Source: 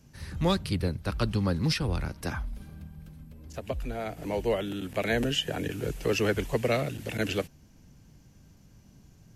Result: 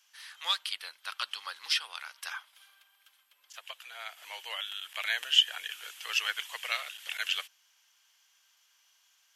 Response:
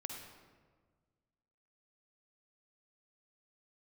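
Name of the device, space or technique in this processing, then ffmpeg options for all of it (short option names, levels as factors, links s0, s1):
headphones lying on a table: -af "highpass=f=1100:w=0.5412,highpass=f=1100:w=1.3066,equalizer=f=3200:t=o:w=0.33:g=10.5"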